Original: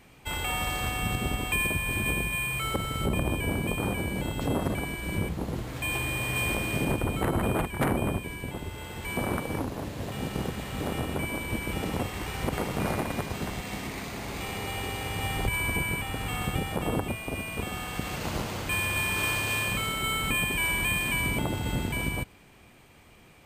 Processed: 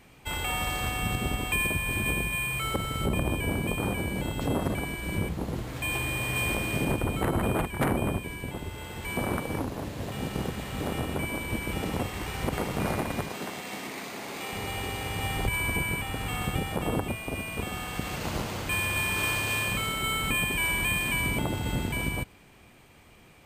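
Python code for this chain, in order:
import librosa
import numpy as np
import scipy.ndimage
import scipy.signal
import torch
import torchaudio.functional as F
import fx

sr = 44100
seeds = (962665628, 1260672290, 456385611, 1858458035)

y = fx.highpass(x, sr, hz=240.0, slope=12, at=(13.29, 14.53))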